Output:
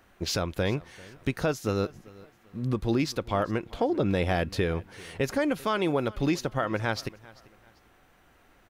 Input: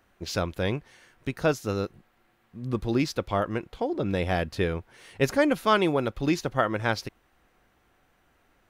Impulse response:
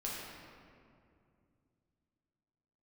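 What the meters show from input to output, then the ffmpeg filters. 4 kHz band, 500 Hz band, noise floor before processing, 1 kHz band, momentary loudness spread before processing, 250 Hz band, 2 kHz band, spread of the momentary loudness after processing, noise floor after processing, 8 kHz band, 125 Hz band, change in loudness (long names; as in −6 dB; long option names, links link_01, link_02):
−0.5 dB, −1.5 dB, −67 dBFS, −3.0 dB, 12 LU, −0.5 dB, −2.5 dB, 8 LU, −61 dBFS, +1.0 dB, +0.5 dB, −1.5 dB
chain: -filter_complex "[0:a]asplit=2[link_01][link_02];[link_02]acompressor=threshold=-32dB:ratio=6,volume=-2dB[link_03];[link_01][link_03]amix=inputs=2:normalize=0,alimiter=limit=-15dB:level=0:latency=1:release=206,aecho=1:1:392|784:0.0794|0.0262"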